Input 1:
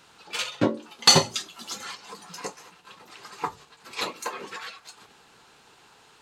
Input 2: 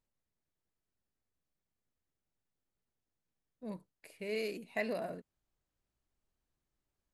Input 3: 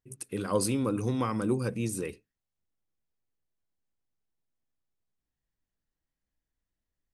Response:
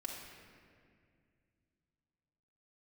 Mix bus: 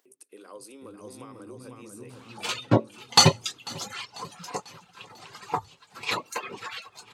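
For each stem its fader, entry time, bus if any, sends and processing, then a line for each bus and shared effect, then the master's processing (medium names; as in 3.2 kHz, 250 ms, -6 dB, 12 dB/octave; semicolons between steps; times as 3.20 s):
-1.0 dB, 2.10 s, no bus, no send, echo send -22.5 dB, peaking EQ 110 Hz +12 dB 0.94 oct; reverb removal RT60 0.65 s; sweeping bell 2.9 Hz 650–2800 Hz +9 dB
mute
-10.5 dB, 0.00 s, bus A, no send, echo send -8 dB, none
bus A: 0.0 dB, high-pass 320 Hz 24 dB/octave; compression 2.5:1, threshold -43 dBFS, peak gain reduction 7.5 dB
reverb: none
echo: feedback delay 494 ms, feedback 52%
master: peaking EQ 1.7 kHz -3 dB; upward compressor, threshold -53 dBFS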